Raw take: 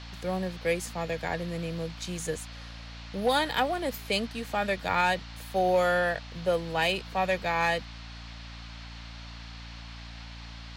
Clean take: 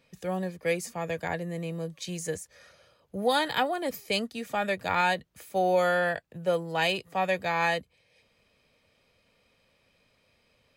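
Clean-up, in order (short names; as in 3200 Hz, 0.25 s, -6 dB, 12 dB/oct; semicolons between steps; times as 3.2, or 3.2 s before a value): clip repair -16.5 dBFS; de-hum 57.3 Hz, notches 5; notch 4300 Hz, Q 30; noise print and reduce 25 dB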